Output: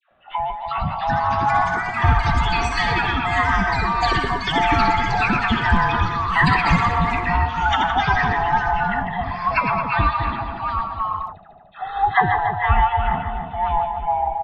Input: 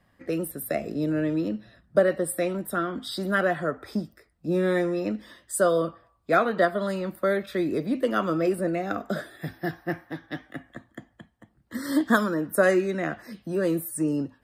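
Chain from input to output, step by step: split-band scrambler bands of 500 Hz; resampled via 8 kHz; on a send: two-band feedback delay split 780 Hz, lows 280 ms, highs 149 ms, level -5.5 dB; on the sum: ever faster or slower copies 453 ms, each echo +5 st, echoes 3; 12.36–13.00 s: peaking EQ 280 Hz -13 dB 0.64 oct; phase dispersion lows, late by 110 ms, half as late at 980 Hz; trim +4 dB

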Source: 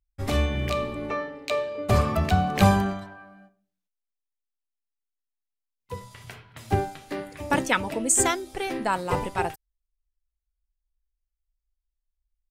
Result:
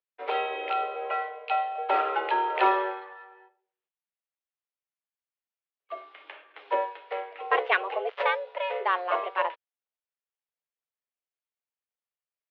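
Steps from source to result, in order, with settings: dead-time distortion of 0.066 ms; mistuned SSB +180 Hz 250–3100 Hz

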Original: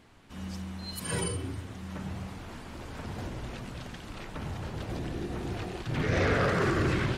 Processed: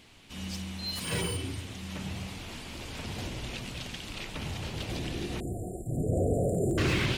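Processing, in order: 5.40–6.78 s: brick-wall FIR band-stop 760–7000 Hz; resonant high shelf 2 kHz +7.5 dB, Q 1.5; slew-rate limiter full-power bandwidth 100 Hz

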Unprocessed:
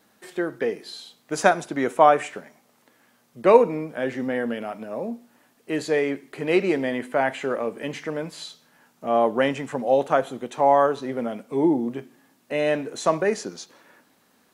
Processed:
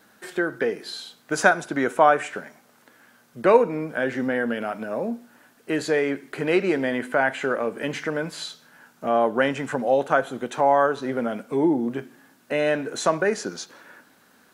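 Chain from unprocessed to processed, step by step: peaking EQ 1.5 kHz +8.5 dB 0.3 oct; in parallel at +2 dB: compression, threshold -27 dBFS, peak gain reduction 18 dB; on the sum: trim -3.5 dB

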